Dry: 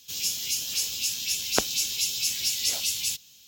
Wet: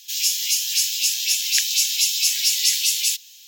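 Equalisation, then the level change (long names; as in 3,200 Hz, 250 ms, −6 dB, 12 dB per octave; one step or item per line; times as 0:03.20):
linear-phase brick-wall high-pass 1,600 Hz
+7.5 dB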